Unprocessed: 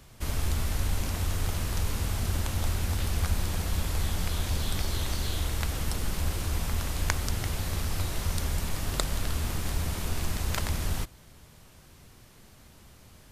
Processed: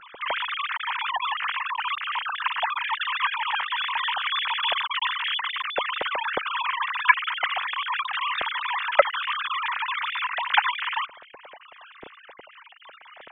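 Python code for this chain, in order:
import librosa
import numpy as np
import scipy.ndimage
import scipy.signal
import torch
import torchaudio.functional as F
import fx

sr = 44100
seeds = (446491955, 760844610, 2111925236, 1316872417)

y = fx.sine_speech(x, sr)
y = fx.low_shelf(y, sr, hz=370.0, db=11.0)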